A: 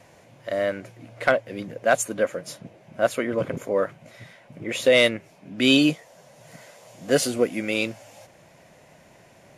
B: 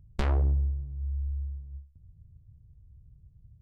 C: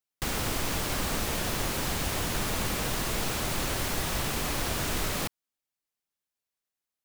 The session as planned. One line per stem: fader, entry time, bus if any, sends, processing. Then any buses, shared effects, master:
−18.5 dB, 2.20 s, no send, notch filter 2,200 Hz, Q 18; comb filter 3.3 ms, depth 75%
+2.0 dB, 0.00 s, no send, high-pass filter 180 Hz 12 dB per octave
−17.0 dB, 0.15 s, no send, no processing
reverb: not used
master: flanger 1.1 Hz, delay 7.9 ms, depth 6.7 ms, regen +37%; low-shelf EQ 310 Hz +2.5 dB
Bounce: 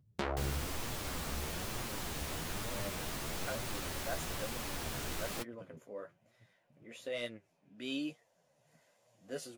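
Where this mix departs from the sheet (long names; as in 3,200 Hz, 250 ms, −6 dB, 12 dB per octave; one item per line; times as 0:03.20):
stem A: missing comb filter 3.3 ms, depth 75%
stem C −17.0 dB → −6.0 dB
master: missing low-shelf EQ 310 Hz +2.5 dB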